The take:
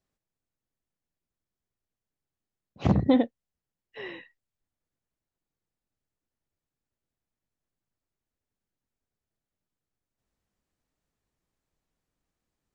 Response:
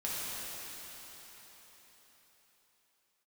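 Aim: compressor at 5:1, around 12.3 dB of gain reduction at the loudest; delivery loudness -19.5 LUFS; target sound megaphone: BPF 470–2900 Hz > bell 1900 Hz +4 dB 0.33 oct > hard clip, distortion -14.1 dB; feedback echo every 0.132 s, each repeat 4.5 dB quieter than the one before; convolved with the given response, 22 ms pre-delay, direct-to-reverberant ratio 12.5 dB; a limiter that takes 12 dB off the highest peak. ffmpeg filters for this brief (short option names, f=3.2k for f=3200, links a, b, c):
-filter_complex "[0:a]acompressor=threshold=-30dB:ratio=5,alimiter=level_in=6dB:limit=-24dB:level=0:latency=1,volume=-6dB,aecho=1:1:132|264|396|528|660|792|924|1056|1188:0.596|0.357|0.214|0.129|0.0772|0.0463|0.0278|0.0167|0.01,asplit=2[a][b];[1:a]atrim=start_sample=2205,adelay=22[c];[b][c]afir=irnorm=-1:irlink=0,volume=-18dB[d];[a][d]amix=inputs=2:normalize=0,highpass=470,lowpass=2.9k,equalizer=f=1.9k:t=o:w=0.33:g=4,asoftclip=type=hard:threshold=-38.5dB,volume=27.5dB"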